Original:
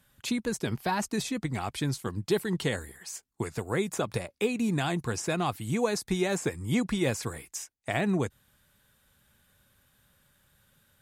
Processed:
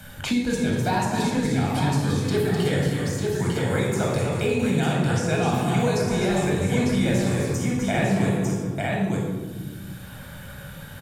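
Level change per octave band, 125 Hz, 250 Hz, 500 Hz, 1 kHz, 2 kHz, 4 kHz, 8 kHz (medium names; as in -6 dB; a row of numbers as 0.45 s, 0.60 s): +11.0 dB, +8.0 dB, +7.0 dB, +7.5 dB, +6.5 dB, +5.5 dB, +3.5 dB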